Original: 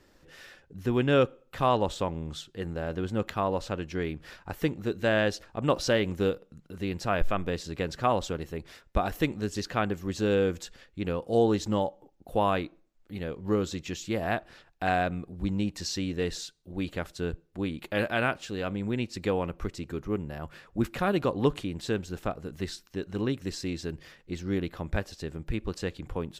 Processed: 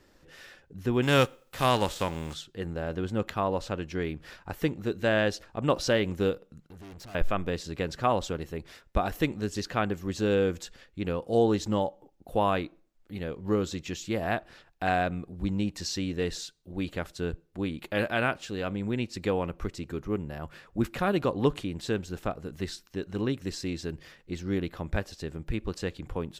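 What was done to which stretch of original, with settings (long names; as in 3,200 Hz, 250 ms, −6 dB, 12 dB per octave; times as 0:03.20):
0:01.02–0:02.33: spectral envelope flattened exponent 0.6
0:06.65–0:07.15: tube saturation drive 44 dB, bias 0.6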